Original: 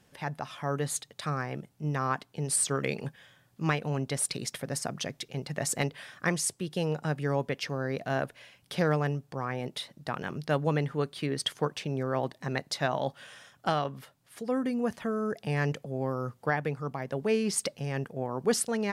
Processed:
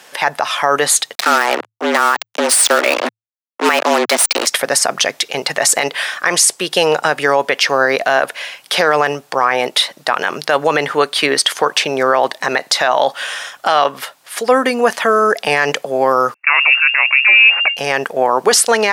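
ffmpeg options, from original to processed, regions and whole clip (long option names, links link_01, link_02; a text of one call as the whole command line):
ffmpeg -i in.wav -filter_complex "[0:a]asettb=1/sr,asplit=3[link_01][link_02][link_03];[link_01]atrim=end=1.154[link_04];[link_02]atrim=start=1.15:end=4.47,asetpts=PTS-STARTPTS,afade=type=in:duration=0.004:curve=qsin,afade=type=out:start_time=3.316:duration=0.004:curve=qsin,highshelf=frequency=6300:gain=-10,acrusher=bits=5:mix=0:aa=0.5,afreqshift=110[link_05];[link_03]atrim=start=4.466[link_06];[link_04][link_05]acrossfade=duration=0.004:curve1=hsin:curve2=qsin[link_07];[link_07][link_06]acrossfade=duration=0.004:curve1=qsin:curve2=hsin,asettb=1/sr,asplit=3[link_08][link_09][link_10];[link_08]atrim=end=16.344[link_11];[link_09]atrim=start=16.34:end=17.77,asetpts=PTS-STARTPTS,afade=type=in:duration=0.004:curve=qsin,afade=type=out:start_time=1.426:duration=0.004:curve=qsin,aeval=exprs='if(lt(val(0),0),0.447*val(0),val(0))':channel_layout=same,agate=range=-26dB:threshold=-51dB:ratio=16:release=100:detection=peak,lowpass=frequency=2400:width_type=q:width=0.5098,lowpass=frequency=2400:width_type=q:width=0.6013,lowpass=frequency=2400:width_type=q:width=0.9,lowpass=frequency=2400:width_type=q:width=2.563,afreqshift=-2800[link_12];[link_10]atrim=start=17.766[link_13];[link_11][link_12]acrossfade=duration=0.004:curve1=hsin:curve2=qsin[link_14];[link_14][link_13]acrossfade=duration=0.004:curve1=qsin:curve2=hsin,highpass=670,highshelf=frequency=10000:gain=-3,alimiter=level_in=27dB:limit=-1dB:release=50:level=0:latency=1,volume=-1dB" out.wav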